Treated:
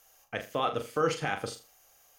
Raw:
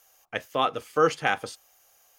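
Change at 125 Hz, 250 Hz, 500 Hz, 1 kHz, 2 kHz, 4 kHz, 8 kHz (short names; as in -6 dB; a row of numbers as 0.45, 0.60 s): +1.0, -3.0, -4.5, -6.0, -6.5, -5.0, -1.5 dB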